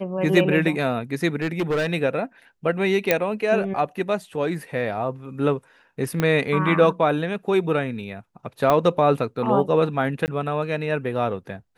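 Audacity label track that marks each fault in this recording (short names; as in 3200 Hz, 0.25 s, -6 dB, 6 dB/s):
1.360000	1.870000	clipped -19 dBFS
3.110000	3.110000	pop -3 dBFS
6.200000	6.200000	pop -9 dBFS
8.700000	8.700000	pop -7 dBFS
10.260000	10.280000	gap 19 ms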